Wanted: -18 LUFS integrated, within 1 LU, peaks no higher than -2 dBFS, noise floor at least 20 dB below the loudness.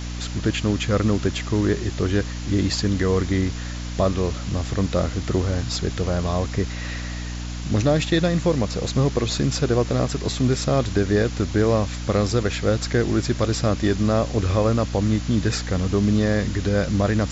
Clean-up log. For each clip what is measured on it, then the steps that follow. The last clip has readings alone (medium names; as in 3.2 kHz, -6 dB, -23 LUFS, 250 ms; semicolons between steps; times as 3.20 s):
hum 60 Hz; highest harmonic 300 Hz; hum level -28 dBFS; noise floor -30 dBFS; noise floor target -43 dBFS; loudness -22.5 LUFS; peak level -7.5 dBFS; loudness target -18.0 LUFS
-> hum notches 60/120/180/240/300 Hz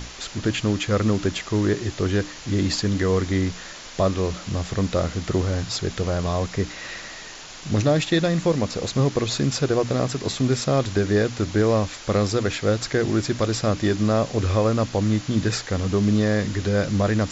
hum not found; noise floor -39 dBFS; noise floor target -43 dBFS
-> noise reduction 6 dB, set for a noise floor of -39 dBFS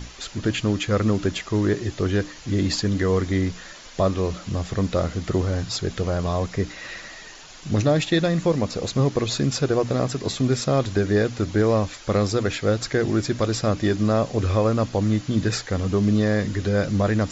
noise floor -42 dBFS; noise floor target -43 dBFS
-> noise reduction 6 dB, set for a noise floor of -42 dBFS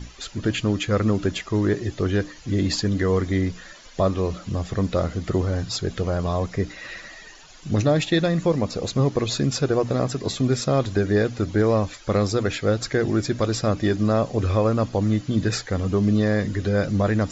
noise floor -45 dBFS; loudness -23.0 LUFS; peak level -9.5 dBFS; loudness target -18.0 LUFS
-> trim +5 dB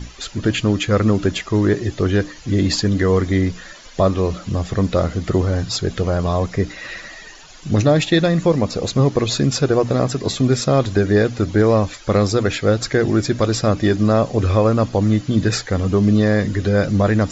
loudness -18.0 LUFS; peak level -4.5 dBFS; noise floor -40 dBFS